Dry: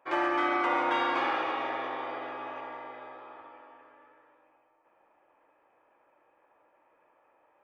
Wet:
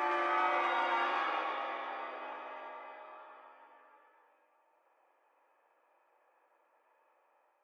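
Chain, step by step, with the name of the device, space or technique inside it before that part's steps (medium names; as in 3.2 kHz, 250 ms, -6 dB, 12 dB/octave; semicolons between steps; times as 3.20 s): ghost voice (reverse; reverberation RT60 1.7 s, pre-delay 74 ms, DRR -1.5 dB; reverse; high-pass 470 Hz 12 dB/octave); trim -7.5 dB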